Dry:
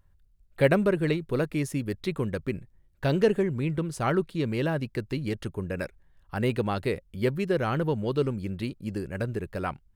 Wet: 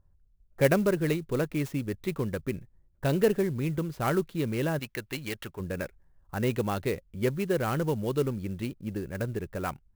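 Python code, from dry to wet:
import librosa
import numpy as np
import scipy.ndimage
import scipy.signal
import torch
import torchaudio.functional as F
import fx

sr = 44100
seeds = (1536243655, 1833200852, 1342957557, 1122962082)

y = fx.env_lowpass(x, sr, base_hz=930.0, full_db=-22.5)
y = fx.tilt_shelf(y, sr, db=-8.0, hz=750.0, at=(4.79, 5.6))
y = fx.clock_jitter(y, sr, seeds[0], jitter_ms=0.029)
y = y * librosa.db_to_amplitude(-1.5)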